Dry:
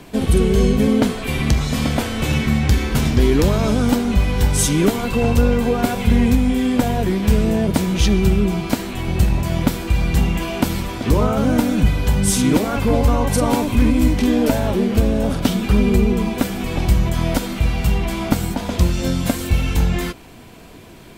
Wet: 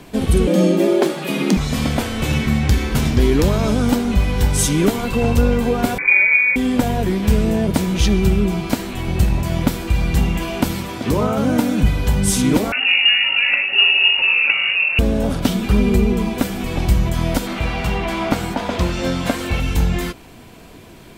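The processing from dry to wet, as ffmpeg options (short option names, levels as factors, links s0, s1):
-filter_complex "[0:a]asettb=1/sr,asplit=3[s0][s1][s2];[s0]atrim=end=0.474[s3];[s1]atrim=start=0.47:end=1.57,asetpts=PTS-STARTPTS,afade=t=in:d=0.004:c=qsin,afade=t=out:st=1.096:d=0.004:c=qsin,afreqshift=130[s4];[s2]atrim=start=1.566[s5];[s3][s4]acrossfade=d=0.004:c1=hsin:c2=qsin[s6];[s6][s5]acrossfade=d=0.004:c1=qsin:c2=hsin,asettb=1/sr,asplit=3[s7][s8][s9];[s7]atrim=end=5.984[s10];[s8]atrim=start=5.98:end=6.56,asetpts=PTS-STARTPTS,afade=t=in:d=0.004:c=qsin,afade=t=out:st=0.576:d=0.004:c=qsin,lowpass=f=2100:t=q:w=0.5098,lowpass=f=2100:t=q:w=0.6013,lowpass=f=2100:t=q:w=0.9,lowpass=f=2100:t=q:w=2.563,afreqshift=-2500[s11];[s9]atrim=start=6.556[s12];[s10][s11]acrossfade=d=0.004:c1=hsin:c2=qsin[s13];[s13][s12]acrossfade=d=0.004:c1=qsin:c2=hsin,asettb=1/sr,asplit=3[s14][s15][s16];[s14]atrim=end=10.724[s17];[s15]atrim=start=10.72:end=11.81,asetpts=PTS-STARTPTS,afade=t=in:d=0.004:c=qsin,afade=t=out:st=1.086:d=0.004:c=qsin,highpass=99[s18];[s16]atrim=start=11.806[s19];[s17][s18]acrossfade=d=0.004:c1=hsin:c2=qsin[s20];[s20][s19]acrossfade=d=0.004:c1=qsin:c2=hsin,asettb=1/sr,asplit=3[s21][s22][s23];[s21]atrim=end=12.724[s24];[s22]atrim=start=12.72:end=14.99,asetpts=PTS-STARTPTS,afade=t=in:d=0.004:c=qsin,afade=t=out:st=2.266:d=0.004:c=qsin,lowpass=f=2500:t=q:w=0.5098,lowpass=f=2500:t=q:w=0.6013,lowpass=f=2500:t=q:w=0.9,lowpass=f=2500:t=q:w=2.563,afreqshift=-2900[s25];[s23]atrim=start=14.986[s26];[s24][s25]acrossfade=d=0.004:c1=hsin:c2=qsin[s27];[s27][s26]acrossfade=d=0.004:c1=qsin:c2=hsin,asettb=1/sr,asplit=3[s28][s29][s30];[s28]atrim=end=17.474[s31];[s29]atrim=start=17.47:end=19.6,asetpts=PTS-STARTPTS,afade=t=in:d=0.004:c=qsin,afade=t=out:st=2.126:d=0.004:c=qsin,asplit=2[s32][s33];[s33]highpass=f=720:p=1,volume=4.47,asoftclip=type=tanh:threshold=0.708[s34];[s32][s34]amix=inputs=2:normalize=0,lowpass=f=1900:p=1,volume=0.501[s35];[s30]atrim=start=19.596[s36];[s31][s35]acrossfade=d=0.004:c1=hsin:c2=qsin[s37];[s37][s36]acrossfade=d=0.004:c1=qsin:c2=hsin"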